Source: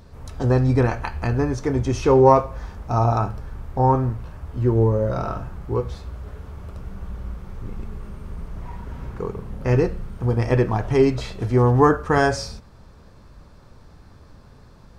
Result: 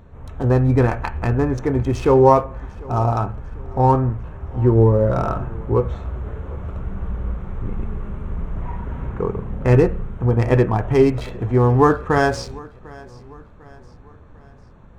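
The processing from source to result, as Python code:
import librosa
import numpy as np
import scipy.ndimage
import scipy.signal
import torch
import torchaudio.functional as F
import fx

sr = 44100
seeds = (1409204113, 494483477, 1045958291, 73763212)

p1 = fx.wiener(x, sr, points=9)
p2 = fx.rider(p1, sr, range_db=4, speed_s=2.0)
p3 = p2 + fx.echo_feedback(p2, sr, ms=748, feedback_pct=45, wet_db=-22.5, dry=0)
y = F.gain(torch.from_numpy(p3), 2.5).numpy()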